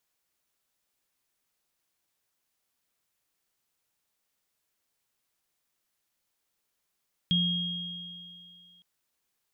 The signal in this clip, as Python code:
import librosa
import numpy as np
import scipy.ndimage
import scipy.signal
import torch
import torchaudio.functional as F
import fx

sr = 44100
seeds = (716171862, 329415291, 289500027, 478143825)

y = fx.additive_free(sr, length_s=1.51, hz=175.0, level_db=-24, upper_db=(0.5,), decay_s=2.03, upper_decays_s=(2.71,), upper_hz=(3260.0,))